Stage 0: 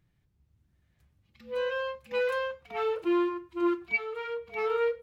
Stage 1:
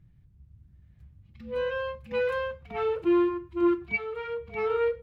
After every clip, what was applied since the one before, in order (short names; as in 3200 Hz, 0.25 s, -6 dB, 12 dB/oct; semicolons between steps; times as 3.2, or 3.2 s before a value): tone controls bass +15 dB, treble -7 dB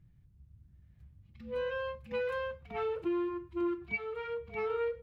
compressor, threshold -26 dBFS, peak gain reduction 6.5 dB; gain -4 dB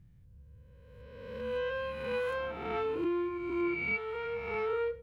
spectral swells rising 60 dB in 1.50 s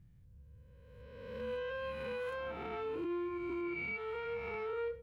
limiter -30 dBFS, peak gain reduction 6 dB; gain -2.5 dB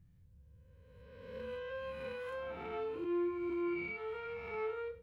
resonator 87 Hz, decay 0.43 s, harmonics all, mix 70%; gain +4.5 dB